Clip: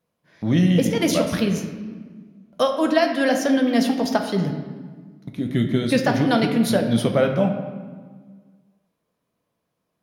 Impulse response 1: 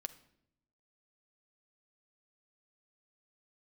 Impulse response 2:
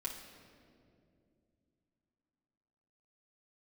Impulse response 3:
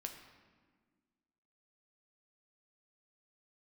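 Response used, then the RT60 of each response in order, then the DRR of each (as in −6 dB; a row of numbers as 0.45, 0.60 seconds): 3; 0.75, 2.5, 1.6 seconds; 9.5, −4.0, 3.5 decibels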